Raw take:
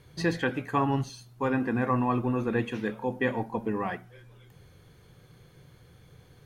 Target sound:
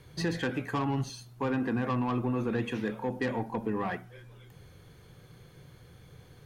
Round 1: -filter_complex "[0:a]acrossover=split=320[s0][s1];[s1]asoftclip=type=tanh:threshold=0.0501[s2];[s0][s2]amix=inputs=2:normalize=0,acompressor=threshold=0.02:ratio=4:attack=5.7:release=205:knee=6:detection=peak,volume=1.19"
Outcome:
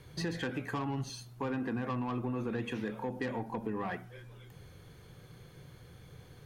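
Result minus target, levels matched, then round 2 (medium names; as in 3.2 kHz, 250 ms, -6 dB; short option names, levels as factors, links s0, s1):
compression: peak gain reduction +5.5 dB
-filter_complex "[0:a]acrossover=split=320[s0][s1];[s1]asoftclip=type=tanh:threshold=0.0501[s2];[s0][s2]amix=inputs=2:normalize=0,acompressor=threshold=0.0473:ratio=4:attack=5.7:release=205:knee=6:detection=peak,volume=1.19"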